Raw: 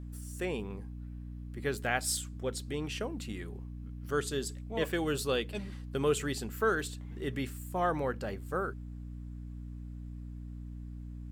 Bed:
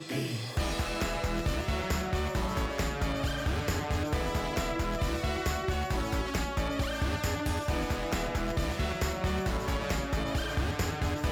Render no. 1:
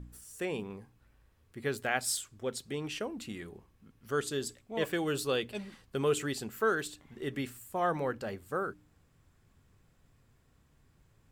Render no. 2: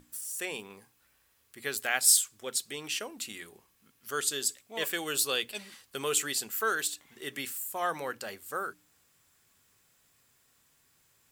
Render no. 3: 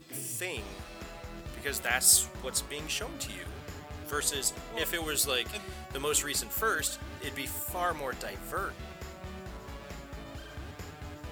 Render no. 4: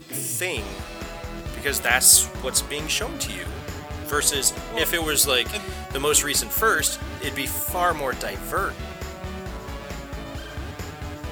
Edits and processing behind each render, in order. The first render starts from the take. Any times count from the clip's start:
de-hum 60 Hz, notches 5
tilt EQ +4 dB/octave; hum notches 60/120/180 Hz
add bed -12.5 dB
trim +9.5 dB; peak limiter -2 dBFS, peak gain reduction 2.5 dB

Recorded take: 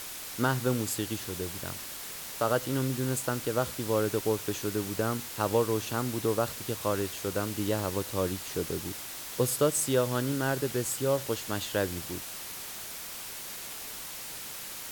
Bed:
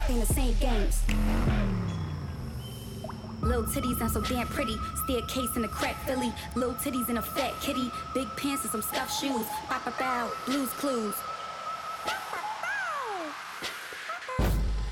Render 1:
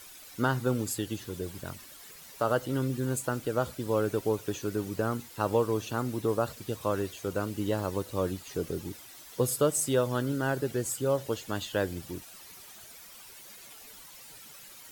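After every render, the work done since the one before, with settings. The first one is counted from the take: noise reduction 12 dB, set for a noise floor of -41 dBFS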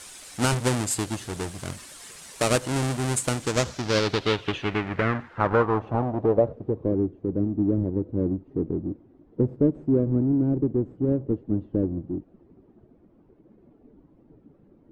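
square wave that keeps the level; low-pass sweep 8.9 kHz -> 310 Hz, 3.33–7.05 s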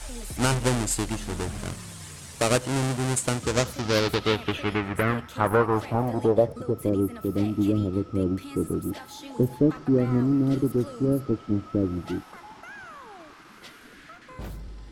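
add bed -11 dB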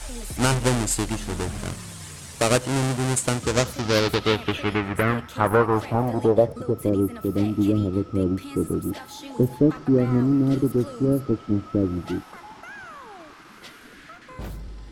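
trim +2.5 dB

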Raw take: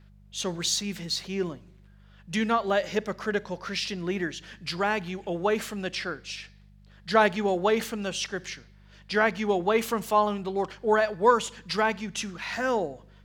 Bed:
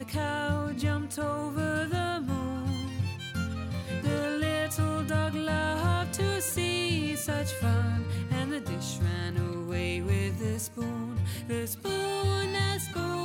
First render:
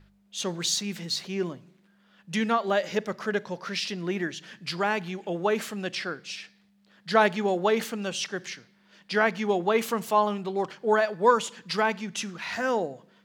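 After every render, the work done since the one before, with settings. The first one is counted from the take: de-hum 50 Hz, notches 3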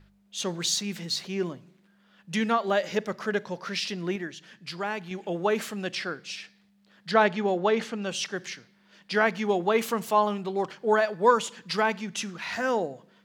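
4.16–5.11 s: gain -5 dB; 7.11–8.09 s: distance through air 80 m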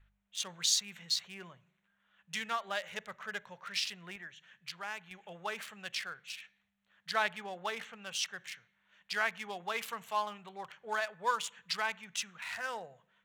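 local Wiener filter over 9 samples; amplifier tone stack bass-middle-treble 10-0-10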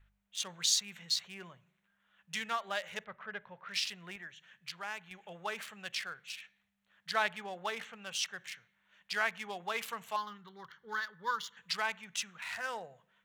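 3.04–3.69 s: distance through air 350 m; 10.16–11.57 s: static phaser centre 2.5 kHz, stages 6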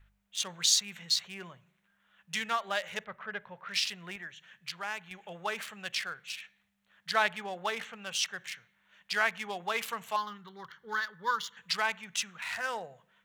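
trim +4 dB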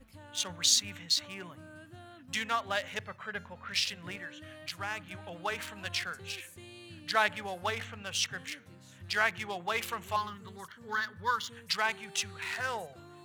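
add bed -21 dB

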